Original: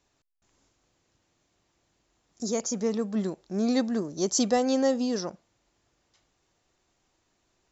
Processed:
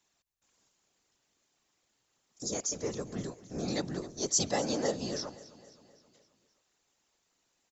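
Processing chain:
spectral tilt +2 dB per octave
random phases in short frames
repeating echo 263 ms, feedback 55%, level −18.5 dB
level −5.5 dB

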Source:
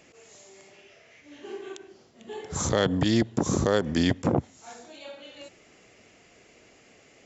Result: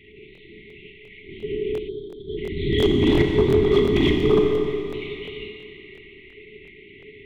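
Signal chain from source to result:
linear-prediction vocoder at 8 kHz whisper
flat-topped bell 850 Hz +8.5 dB 2.4 octaves, from 0:02.81 +16 dB
brick-wall band-stop 440–1,900 Hz
low-shelf EQ 81 Hz −6.5 dB
hard clipping −17.5 dBFS, distortion −15 dB
mains-hum notches 60/120/180/240/300/360 Hz
brickwall limiter −20 dBFS, peak gain reduction 5.5 dB
four-comb reverb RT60 2.5 s, combs from 29 ms, DRR 1.5 dB
0:01.89–0:02.37: gain on a spectral selection 970–3,100 Hz −27 dB
regular buffer underruns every 0.35 s, samples 1,024, repeat, from 0:00.33
level +8 dB

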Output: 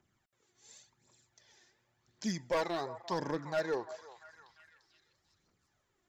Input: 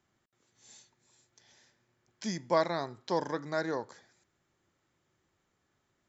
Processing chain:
phase shifter 0.91 Hz, delay 2.9 ms, feedback 55%
hard clipping −23.5 dBFS, distortion −11 dB
echo through a band-pass that steps 345 ms, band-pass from 820 Hz, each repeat 0.7 octaves, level −11.5 dB
level −3 dB

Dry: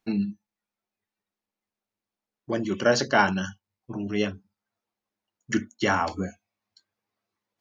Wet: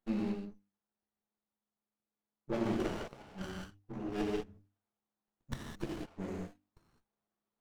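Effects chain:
gain on one half-wave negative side −12 dB
mains-hum notches 50/100/150/200/250/300 Hz
gate with flip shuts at −16 dBFS, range −30 dB
reverb whose tail is shaped and stops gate 230 ms flat, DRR −6 dB
windowed peak hold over 17 samples
level −7.5 dB

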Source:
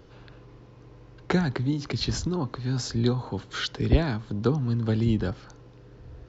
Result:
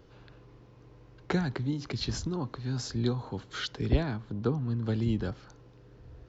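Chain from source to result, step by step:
0:04.03–0:04.84: high-shelf EQ 4,800 Hz −11 dB
level −5 dB

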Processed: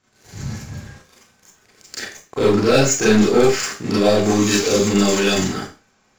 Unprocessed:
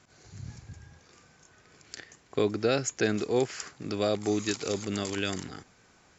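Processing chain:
leveller curve on the samples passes 3
four-comb reverb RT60 0.33 s, combs from 29 ms, DRR −7.5 dB
level −2.5 dB

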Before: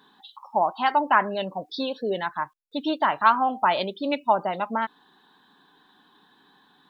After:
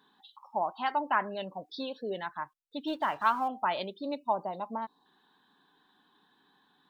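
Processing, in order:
0:02.87–0:03.48: mu-law and A-law mismatch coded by mu
0:03.96–0:05.06: gain on a spectral selection 1,200–3,600 Hz −11 dB
level −8.5 dB

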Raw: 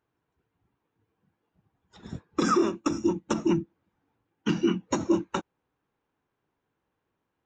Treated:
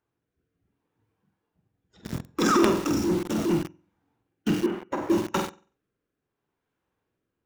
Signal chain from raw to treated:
rotating-speaker cabinet horn 0.7 Hz
0:02.26–0:03.53: transient designer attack −7 dB, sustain +9 dB
flutter between parallel walls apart 8 metres, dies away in 0.41 s
in parallel at −5.5 dB: log-companded quantiser 2 bits
0:04.66–0:05.10: on the sum: three-way crossover with the lows and the highs turned down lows −12 dB, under 360 Hz, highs −20 dB, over 2,300 Hz

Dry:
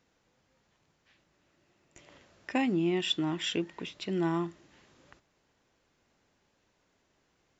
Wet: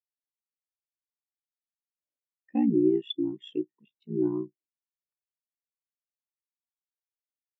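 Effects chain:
ring modulation 30 Hz
every bin expanded away from the loudest bin 2.5 to 1
level +6.5 dB

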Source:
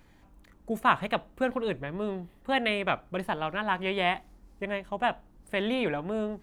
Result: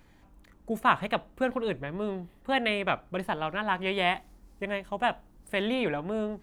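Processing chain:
0:03.86–0:05.66: high-shelf EQ 4,700 Hz +5 dB

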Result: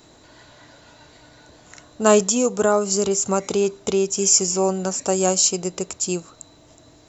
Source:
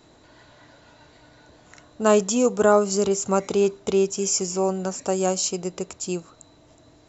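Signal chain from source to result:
high-shelf EQ 5,200 Hz +8.5 dB
0:02.25–0:04.17: downward compressor 1.5 to 1, threshold −23 dBFS, peak gain reduction 4.5 dB
level +2.5 dB

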